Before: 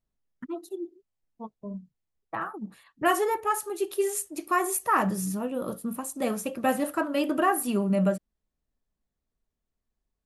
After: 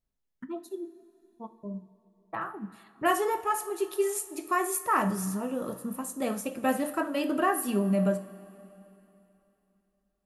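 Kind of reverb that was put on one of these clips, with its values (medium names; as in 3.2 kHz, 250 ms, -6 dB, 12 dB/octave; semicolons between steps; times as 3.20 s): two-slope reverb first 0.42 s, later 3.2 s, from -15 dB, DRR 9 dB; trim -2.5 dB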